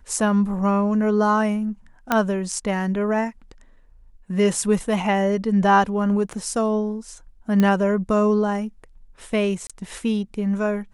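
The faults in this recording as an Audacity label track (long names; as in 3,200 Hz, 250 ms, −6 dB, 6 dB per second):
2.120000	2.120000	click −5 dBFS
6.330000	6.330000	drop-out 4.8 ms
7.600000	7.600000	click −9 dBFS
9.670000	9.700000	drop-out 26 ms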